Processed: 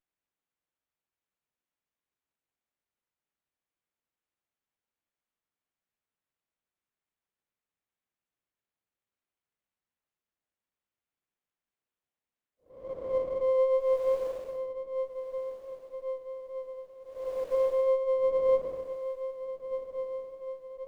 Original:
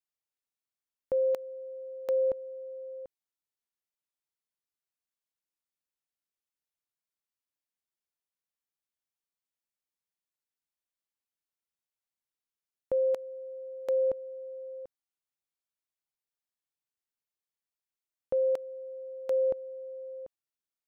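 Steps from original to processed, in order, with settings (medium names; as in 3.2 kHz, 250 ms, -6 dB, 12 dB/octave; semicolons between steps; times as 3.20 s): Paulstretch 4.5×, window 0.25 s, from 15.40 s; peaking EQ 1.1 kHz -6 dB 1.6 oct; echo that smears into a reverb 1354 ms, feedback 44%, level -11 dB; sliding maximum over 9 samples; trim +1.5 dB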